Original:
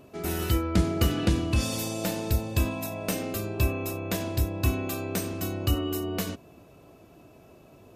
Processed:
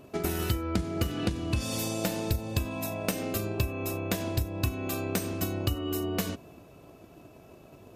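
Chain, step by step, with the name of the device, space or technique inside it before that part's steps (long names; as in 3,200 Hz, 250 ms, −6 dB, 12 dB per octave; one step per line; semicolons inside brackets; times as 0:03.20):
drum-bus smash (transient designer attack +8 dB, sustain +2 dB; downward compressor 6 to 1, threshold −24 dBFS, peak gain reduction 13 dB; soft clipping −15 dBFS, distortion −22 dB)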